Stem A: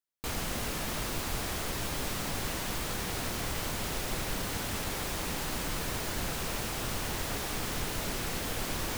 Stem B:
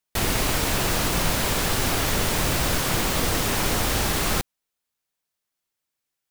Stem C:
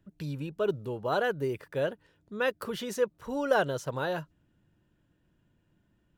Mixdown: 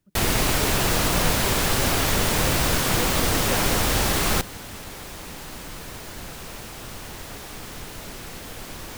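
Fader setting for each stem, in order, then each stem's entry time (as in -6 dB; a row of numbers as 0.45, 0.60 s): -3.0, +1.5, -7.0 dB; 0.00, 0.00, 0.00 s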